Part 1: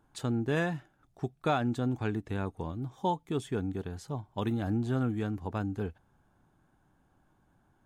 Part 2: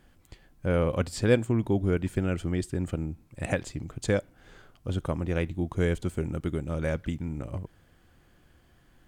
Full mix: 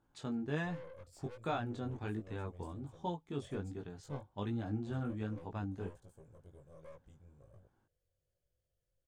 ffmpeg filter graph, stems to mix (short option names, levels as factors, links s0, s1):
-filter_complex "[0:a]lowpass=6900,volume=0.562[s0];[1:a]firequalizer=gain_entry='entry(120,0);entry(250,-17);entry(530,9);entry(820,-15);entry(5800,2)':delay=0.05:min_phase=1,aeval=exprs='(tanh(22.4*val(0)+0.5)-tanh(0.5))/22.4':c=same,volume=0.112[s1];[s0][s1]amix=inputs=2:normalize=0,flanger=delay=17.5:depth=4.2:speed=1.3"